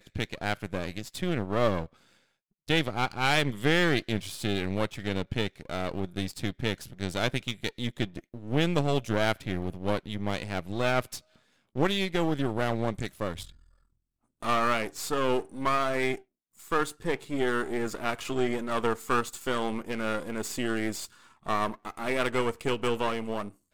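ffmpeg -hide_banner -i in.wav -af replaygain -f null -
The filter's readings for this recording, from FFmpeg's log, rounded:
track_gain = +9.6 dB
track_peak = 0.262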